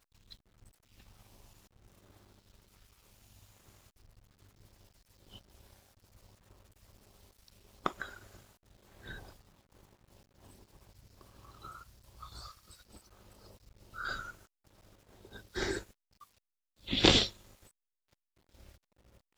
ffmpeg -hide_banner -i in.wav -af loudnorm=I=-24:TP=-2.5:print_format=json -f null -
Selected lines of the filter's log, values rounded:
"input_i" : "-29.8",
"input_tp" : "-3.6",
"input_lra" : "21.6",
"input_thresh" : "-48.0",